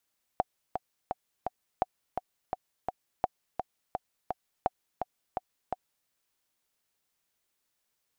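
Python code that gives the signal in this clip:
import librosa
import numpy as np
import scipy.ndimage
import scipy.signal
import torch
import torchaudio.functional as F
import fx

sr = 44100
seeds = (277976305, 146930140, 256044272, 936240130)

y = fx.click_track(sr, bpm=169, beats=4, bars=4, hz=742.0, accent_db=6.0, level_db=-12.0)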